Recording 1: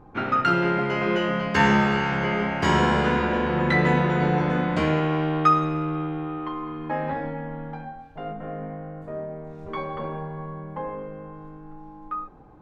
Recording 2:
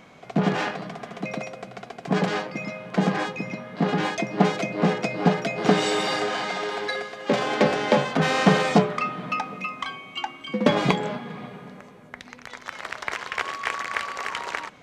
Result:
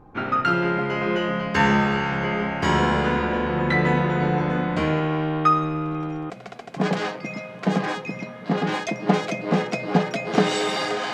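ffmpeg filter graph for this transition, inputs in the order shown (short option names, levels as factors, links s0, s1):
-filter_complex "[1:a]asplit=2[s0][s1];[0:a]apad=whole_dur=11.13,atrim=end=11.13,atrim=end=6.302[s2];[s1]atrim=start=1.608:end=6.44[s3];[s0]atrim=start=1.16:end=1.61,asetpts=PTS-STARTPTS,volume=0.15,afade=t=in:d=0.004:c=hsin,afade=t=out:st=0.446:d=0.004:c=hsin,adelay=257985S[s4];[s2][s3]acrossfade=d=0.004:c1=hsin:c2=hsin[s5];[s5][s4]amix=inputs=2:normalize=0"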